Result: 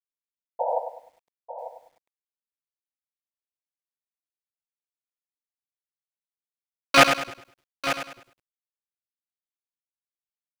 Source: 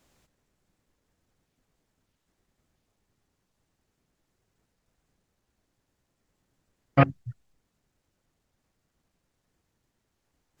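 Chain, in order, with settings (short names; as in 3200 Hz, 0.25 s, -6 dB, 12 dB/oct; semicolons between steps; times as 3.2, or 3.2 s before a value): Wiener smoothing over 25 samples; reverb removal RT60 0.66 s; harmoniser +12 st -15 dB; tilt +4 dB/oct; sample leveller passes 5; crossover distortion -48.5 dBFS; tone controls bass -10 dB, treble -2 dB; painted sound noise, 0.59–0.79, 470–980 Hz -25 dBFS; on a send: echo 0.894 s -11.5 dB; on the sum: lo-fi delay 0.101 s, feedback 35%, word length 10-bit, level -8.5 dB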